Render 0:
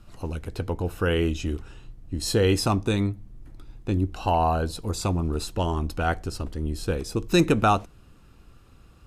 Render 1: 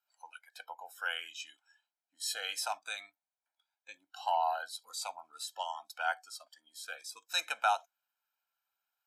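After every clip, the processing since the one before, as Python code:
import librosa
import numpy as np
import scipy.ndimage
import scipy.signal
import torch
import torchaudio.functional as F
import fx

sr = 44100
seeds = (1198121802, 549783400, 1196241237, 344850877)

y = scipy.signal.sosfilt(scipy.signal.butter(4, 800.0, 'highpass', fs=sr, output='sos'), x)
y = fx.noise_reduce_blind(y, sr, reduce_db=19)
y = y + 0.85 * np.pad(y, (int(1.3 * sr / 1000.0), 0))[:len(y)]
y = F.gain(torch.from_numpy(y), -8.0).numpy()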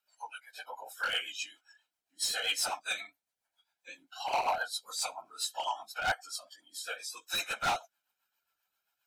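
y = fx.phase_scramble(x, sr, seeds[0], window_ms=50)
y = np.clip(10.0 ** (32.5 / 20.0) * y, -1.0, 1.0) / 10.0 ** (32.5 / 20.0)
y = fx.rotary(y, sr, hz=7.5)
y = F.gain(torch.from_numpy(y), 8.5).numpy()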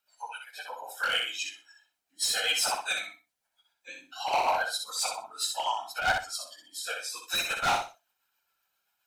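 y = fx.echo_feedback(x, sr, ms=62, feedback_pct=24, wet_db=-5.0)
y = F.gain(torch.from_numpy(y), 3.5).numpy()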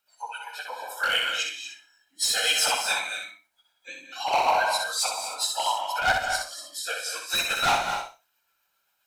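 y = fx.rev_gated(x, sr, seeds[1], gate_ms=270, shape='rising', drr_db=5.5)
y = F.gain(torch.from_numpy(y), 3.5).numpy()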